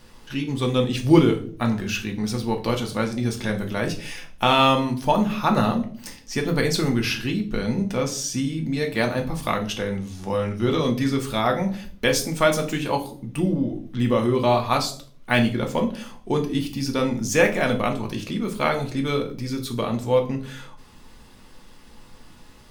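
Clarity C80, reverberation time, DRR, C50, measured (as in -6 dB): 17.0 dB, 0.50 s, 2.5 dB, 12.0 dB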